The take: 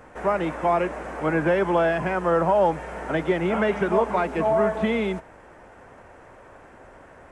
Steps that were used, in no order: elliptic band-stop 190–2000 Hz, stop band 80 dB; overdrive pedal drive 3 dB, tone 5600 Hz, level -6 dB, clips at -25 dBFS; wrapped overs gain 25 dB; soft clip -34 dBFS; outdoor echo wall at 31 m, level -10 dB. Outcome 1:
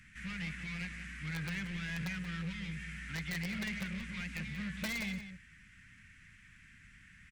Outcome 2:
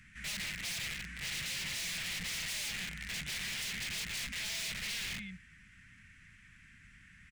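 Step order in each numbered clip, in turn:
overdrive pedal > elliptic band-stop > wrapped overs > soft clip > outdoor echo; outdoor echo > wrapped overs > overdrive pedal > elliptic band-stop > soft clip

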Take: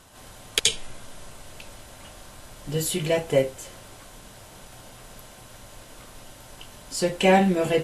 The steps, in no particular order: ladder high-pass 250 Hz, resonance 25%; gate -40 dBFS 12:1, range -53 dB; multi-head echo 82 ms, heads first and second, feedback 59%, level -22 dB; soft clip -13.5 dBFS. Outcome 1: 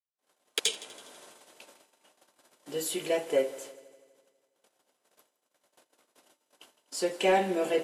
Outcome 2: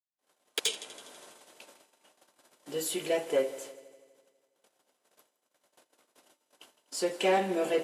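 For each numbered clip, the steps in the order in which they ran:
gate > ladder high-pass > soft clip > multi-head echo; gate > multi-head echo > soft clip > ladder high-pass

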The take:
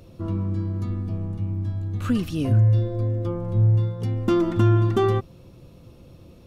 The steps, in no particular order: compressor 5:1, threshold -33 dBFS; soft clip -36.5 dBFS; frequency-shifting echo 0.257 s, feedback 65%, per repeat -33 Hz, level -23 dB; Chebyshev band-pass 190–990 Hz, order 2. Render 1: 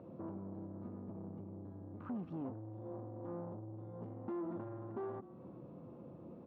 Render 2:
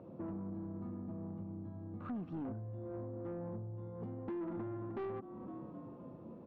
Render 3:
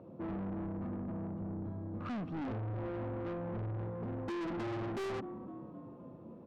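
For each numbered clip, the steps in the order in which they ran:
compressor > frequency-shifting echo > soft clip > Chebyshev band-pass; frequency-shifting echo > compressor > Chebyshev band-pass > soft clip; frequency-shifting echo > Chebyshev band-pass > soft clip > compressor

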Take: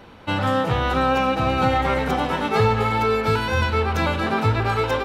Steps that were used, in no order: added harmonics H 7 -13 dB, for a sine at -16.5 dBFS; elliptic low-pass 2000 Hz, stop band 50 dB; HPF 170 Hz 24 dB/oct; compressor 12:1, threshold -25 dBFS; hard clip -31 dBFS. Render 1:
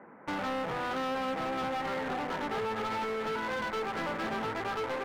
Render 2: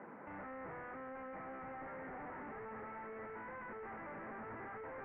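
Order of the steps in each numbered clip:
HPF > added harmonics > elliptic low-pass > compressor > hard clip; HPF > compressor > hard clip > added harmonics > elliptic low-pass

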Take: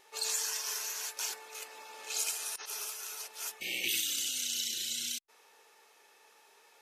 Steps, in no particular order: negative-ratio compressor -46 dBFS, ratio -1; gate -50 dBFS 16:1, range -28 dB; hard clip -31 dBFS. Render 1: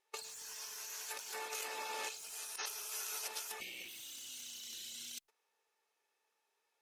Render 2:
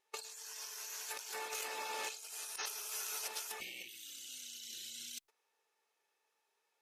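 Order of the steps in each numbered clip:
gate > hard clip > negative-ratio compressor; gate > negative-ratio compressor > hard clip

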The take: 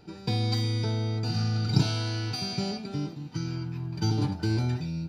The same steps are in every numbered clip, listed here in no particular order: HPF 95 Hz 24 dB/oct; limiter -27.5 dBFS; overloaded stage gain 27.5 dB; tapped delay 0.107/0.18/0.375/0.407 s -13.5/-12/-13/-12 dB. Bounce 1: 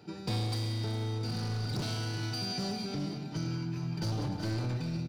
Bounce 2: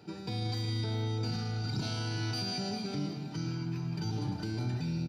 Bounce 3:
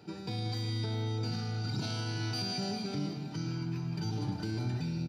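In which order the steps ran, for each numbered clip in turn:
HPF > overloaded stage > tapped delay > limiter; HPF > limiter > overloaded stage > tapped delay; limiter > HPF > overloaded stage > tapped delay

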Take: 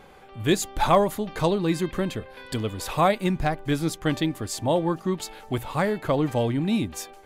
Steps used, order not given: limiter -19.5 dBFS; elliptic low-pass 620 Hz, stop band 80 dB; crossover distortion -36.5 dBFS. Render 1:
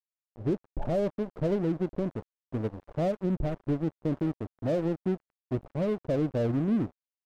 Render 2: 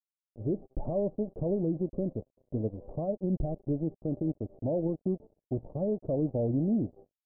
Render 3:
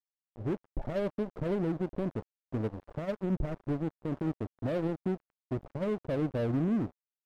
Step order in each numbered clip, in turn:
elliptic low-pass > crossover distortion > limiter; crossover distortion > limiter > elliptic low-pass; limiter > elliptic low-pass > crossover distortion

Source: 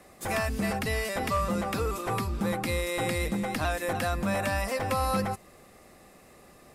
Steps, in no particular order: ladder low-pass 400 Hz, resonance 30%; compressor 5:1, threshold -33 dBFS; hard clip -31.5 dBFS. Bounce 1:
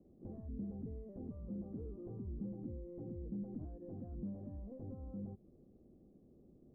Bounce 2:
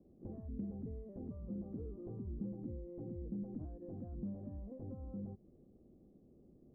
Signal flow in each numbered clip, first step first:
compressor > hard clip > ladder low-pass; compressor > ladder low-pass > hard clip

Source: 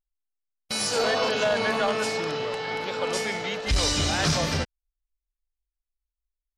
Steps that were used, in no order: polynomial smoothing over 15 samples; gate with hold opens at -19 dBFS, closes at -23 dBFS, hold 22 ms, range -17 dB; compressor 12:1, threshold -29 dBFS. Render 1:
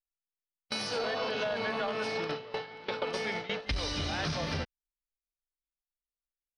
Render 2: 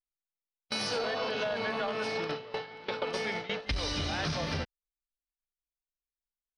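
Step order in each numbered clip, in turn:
gate with hold > compressor > polynomial smoothing; gate with hold > polynomial smoothing > compressor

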